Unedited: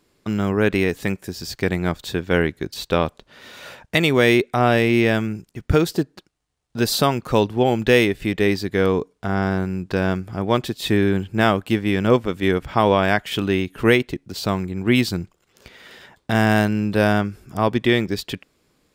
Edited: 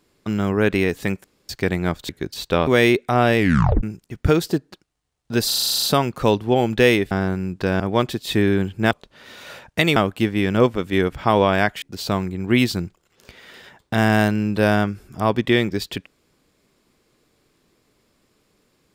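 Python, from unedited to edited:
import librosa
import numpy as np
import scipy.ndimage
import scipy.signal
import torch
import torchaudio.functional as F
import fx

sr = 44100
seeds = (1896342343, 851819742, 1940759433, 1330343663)

y = fx.edit(x, sr, fx.room_tone_fill(start_s=1.24, length_s=0.25),
    fx.cut(start_s=2.09, length_s=0.4),
    fx.move(start_s=3.07, length_s=1.05, to_s=11.46),
    fx.tape_stop(start_s=4.83, length_s=0.45),
    fx.stutter(start_s=6.92, slice_s=0.04, count=10),
    fx.cut(start_s=8.2, length_s=1.21),
    fx.cut(start_s=10.1, length_s=0.25),
    fx.cut(start_s=13.32, length_s=0.87), tone=tone)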